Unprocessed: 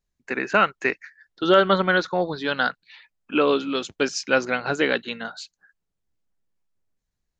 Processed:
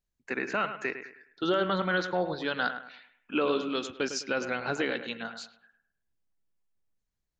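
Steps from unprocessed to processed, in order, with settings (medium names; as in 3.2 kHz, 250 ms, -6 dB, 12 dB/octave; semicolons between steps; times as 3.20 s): peak limiter -12 dBFS, peak gain reduction 7.5 dB; bucket-brigade echo 104 ms, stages 2048, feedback 33%, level -10 dB; trim -5.5 dB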